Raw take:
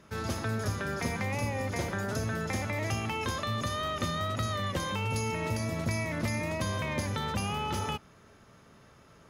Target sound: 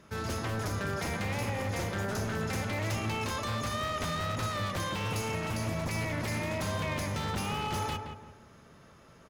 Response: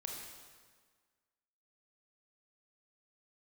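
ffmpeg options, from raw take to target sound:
-filter_complex "[0:a]aeval=exprs='0.0398*(abs(mod(val(0)/0.0398+3,4)-2)-1)':c=same,asplit=2[a][b];[b]adelay=171,lowpass=f=1.6k:p=1,volume=-5.5dB,asplit=2[c][d];[d]adelay=171,lowpass=f=1.6k:p=1,volume=0.37,asplit=2[e][f];[f]adelay=171,lowpass=f=1.6k:p=1,volume=0.37,asplit=2[g][h];[h]adelay=171,lowpass=f=1.6k:p=1,volume=0.37[i];[a][c][e][g][i]amix=inputs=5:normalize=0"

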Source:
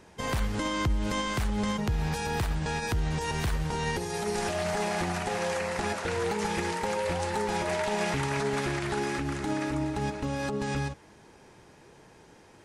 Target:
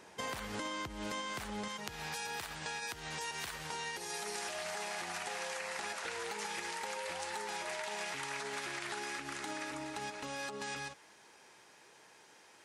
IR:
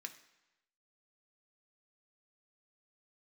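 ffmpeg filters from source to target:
-af "asetnsamples=n=441:p=0,asendcmd='1.68 highpass f 1500',highpass=f=470:p=1,acompressor=threshold=-38dB:ratio=6,volume=1dB"

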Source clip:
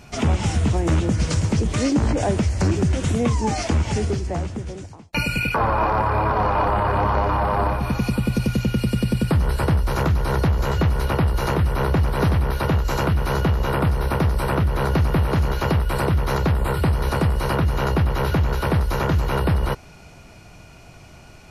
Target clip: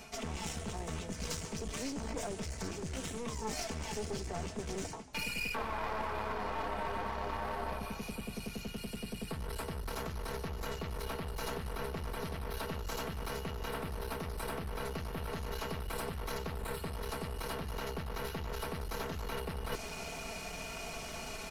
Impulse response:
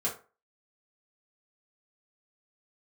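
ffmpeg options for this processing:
-filter_complex "[0:a]acrossover=split=320|3000[a][b][c];[b]acompressor=threshold=-31dB:ratio=1.5[d];[a][d][c]amix=inputs=3:normalize=0,aecho=1:1:4.5:0.82,areverse,acompressor=threshold=-34dB:ratio=10,areverse,firequalizer=gain_entry='entry(210,0);entry(400,6);entry(8300,10)':delay=0.05:min_phase=1,asplit=2[e][f];[f]asplit=4[g][h][i][j];[g]adelay=146,afreqshift=-64,volume=-18dB[k];[h]adelay=292,afreqshift=-128,volume=-24dB[l];[i]adelay=438,afreqshift=-192,volume=-30dB[m];[j]adelay=584,afreqshift=-256,volume=-36.1dB[n];[k][l][m][n]amix=inputs=4:normalize=0[o];[e][o]amix=inputs=2:normalize=0,aeval=exprs='clip(val(0),-1,0.0112)':c=same,volume=-2.5dB"

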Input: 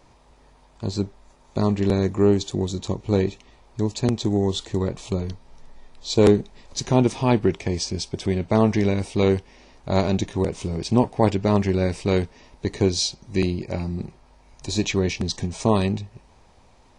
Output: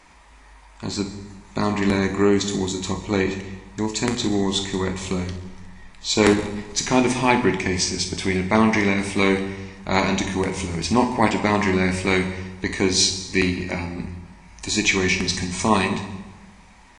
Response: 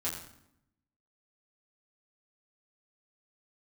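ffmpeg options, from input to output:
-filter_complex "[0:a]atempo=1,equalizer=f=125:t=o:w=1:g=-8,equalizer=f=250:t=o:w=1:g=4,equalizer=f=500:t=o:w=1:g=-6,equalizer=f=1k:t=o:w=1:g=4,equalizer=f=2k:t=o:w=1:g=12,equalizer=f=8k:t=o:w=1:g=6,asplit=2[a][b];[1:a]atrim=start_sample=2205,asetrate=27783,aresample=44100,highshelf=f=6.9k:g=6[c];[b][c]afir=irnorm=-1:irlink=0,volume=-8.5dB[d];[a][d]amix=inputs=2:normalize=0,volume=-2.5dB"

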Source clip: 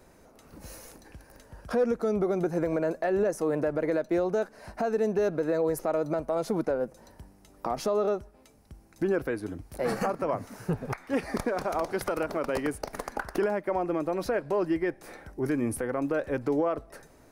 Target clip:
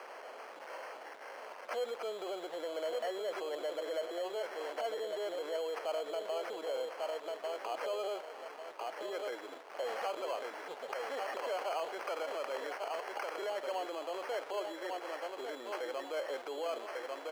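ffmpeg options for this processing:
-filter_complex "[0:a]aeval=exprs='val(0)+0.5*0.0141*sgn(val(0))':c=same,asplit=2[a][b];[b]aecho=0:1:1146|2292|3438|4584:0.422|0.135|0.0432|0.0138[c];[a][c]amix=inputs=2:normalize=0,acrusher=samples=12:mix=1:aa=0.000001,lowpass=f=1.8k:p=1,alimiter=level_in=0.5dB:limit=-24dB:level=0:latency=1:release=30,volume=-0.5dB,highpass=f=500:w=0.5412,highpass=f=500:w=1.3066,volume=-2dB"

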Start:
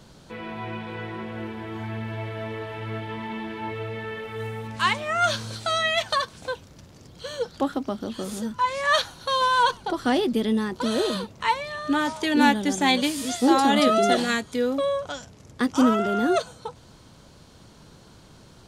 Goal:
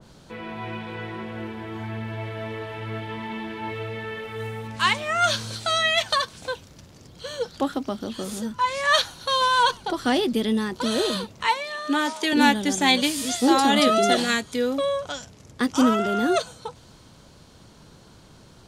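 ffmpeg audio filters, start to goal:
-filter_complex "[0:a]asettb=1/sr,asplit=3[a][b][c];[a]atrim=end=11.474[d];[b]atrim=start=11.47:end=12.33,asetpts=PTS-STARTPTS,afade=t=in:d=0.004:c=qsin,afade=t=out:st=0.856:d=0.004:c=qsin,highpass=f=220:w=0.5412,highpass=f=220:w=1.3066[e];[c]atrim=start=12.326[f];[d][e]acrossfade=d=0.004:c1=hsin:c2=qsin[g];[g][f]acrossfade=d=0.004:c1=qsin:c2=hsin,adynamicequalizer=threshold=0.0141:dfrequency=1900:dqfactor=0.7:tfrequency=1900:tqfactor=0.7:attack=5:release=100:ratio=0.375:range=2:mode=boostabove:tftype=highshelf"

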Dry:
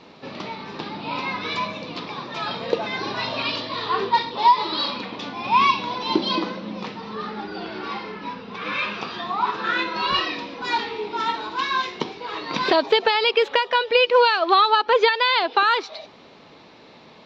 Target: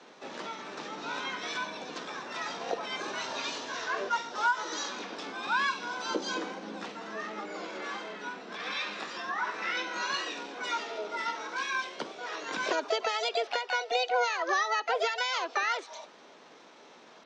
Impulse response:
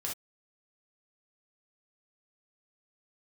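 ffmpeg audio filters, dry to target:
-filter_complex "[0:a]highpass=110,acrossover=split=160[a][b];[b]acompressor=threshold=-31dB:ratio=1.5[c];[a][c]amix=inputs=2:normalize=0,acrossover=split=200 4600:gain=0.158 1 0.112[d][e][f];[d][e][f]amix=inputs=3:normalize=0,asplit=2[g][h];[h]asetrate=66075,aresample=44100,atempo=0.66742,volume=0dB[i];[g][i]amix=inputs=2:normalize=0,asplit=2[j][k];[1:a]atrim=start_sample=2205[l];[k][l]afir=irnorm=-1:irlink=0,volume=-21dB[m];[j][m]amix=inputs=2:normalize=0,volume=-8.5dB"

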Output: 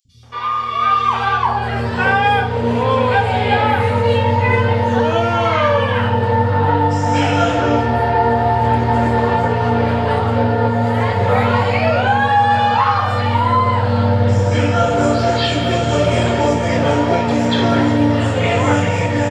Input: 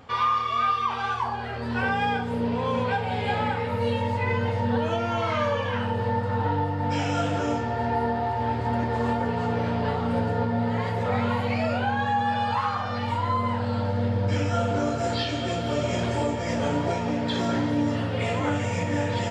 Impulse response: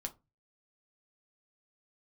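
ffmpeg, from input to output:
-filter_complex "[0:a]acrossover=split=200|5400[a][b][c];[a]adelay=50[d];[b]adelay=230[e];[d][e][c]amix=inputs=3:normalize=0,dynaudnorm=f=320:g=5:m=13dB"

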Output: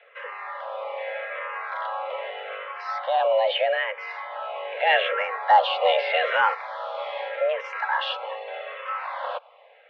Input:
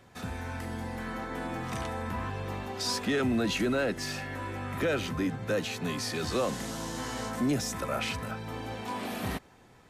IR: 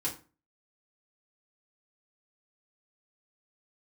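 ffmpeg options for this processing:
-filter_complex "[0:a]asettb=1/sr,asplit=3[a][b][c];[a]atrim=end=7.644[d];[b]atrim=start=7.64:end=8.17,asetpts=PTS-STARTPTS,afade=t=in:d=0.004:c=qsin,afade=t=out:st=0.526:d=0.004:c=qsin,highshelf=f=2.3k:g=9[e];[c]atrim=start=8.166[f];[d][e]acrossfade=d=0.004:c1=hsin:c2=qsin[g];[g][f]acrossfade=d=0.004:c1=qsin:c2=hsin,acontrast=51,highpass=f=180:t=q:w=0.5412,highpass=f=180:t=q:w=1.307,lowpass=f=3k:t=q:w=0.5176,lowpass=f=3k:t=q:w=0.7071,lowpass=f=3k:t=q:w=1.932,afreqshift=320,asplit=3[h][i][j];[h]afade=t=out:st=4.86:d=0.02[k];[i]acontrast=85,afade=t=in:st=4.86:d=0.02,afade=t=out:st=6.53:d=0.02[l];[j]afade=t=in:st=6.53:d=0.02[m];[k][l][m]amix=inputs=3:normalize=0,asplit=2[n][o];[o]afreqshift=-0.81[p];[n][p]amix=inputs=2:normalize=1,volume=2dB"

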